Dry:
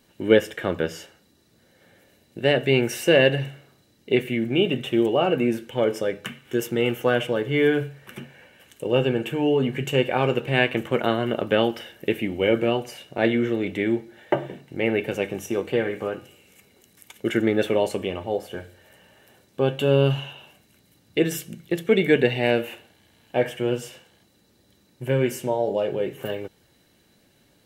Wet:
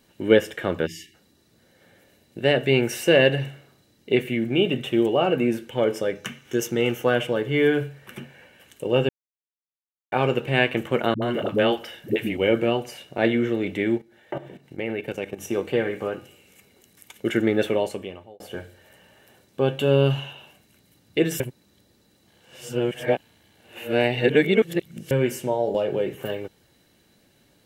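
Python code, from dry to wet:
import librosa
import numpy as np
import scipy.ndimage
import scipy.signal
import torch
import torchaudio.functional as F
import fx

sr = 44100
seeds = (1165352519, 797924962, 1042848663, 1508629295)

y = fx.spec_erase(x, sr, start_s=0.87, length_s=0.27, low_hz=390.0, high_hz=1700.0)
y = fx.peak_eq(y, sr, hz=6100.0, db=10.0, octaves=0.34, at=(6.15, 7.01))
y = fx.dispersion(y, sr, late='highs', ms=79.0, hz=340.0, at=(11.14, 12.37))
y = fx.level_steps(y, sr, step_db=14, at=(13.97, 15.4), fade=0.02)
y = fx.band_squash(y, sr, depth_pct=100, at=(25.74, 26.15))
y = fx.edit(y, sr, fx.silence(start_s=9.09, length_s=1.03),
    fx.fade_out_span(start_s=17.65, length_s=0.75),
    fx.reverse_span(start_s=21.4, length_s=3.71), tone=tone)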